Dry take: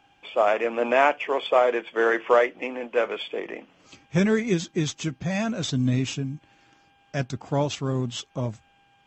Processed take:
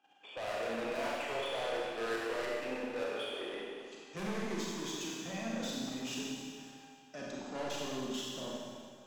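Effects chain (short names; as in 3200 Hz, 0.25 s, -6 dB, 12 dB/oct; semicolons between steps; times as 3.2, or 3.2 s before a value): HPF 210 Hz 24 dB/oct; notch 2200 Hz, Q 10; level quantiser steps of 12 dB; soft clip -34 dBFS, distortion -4 dB; Schroeder reverb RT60 2.1 s, combs from 31 ms, DRR -4.5 dB; gain -5 dB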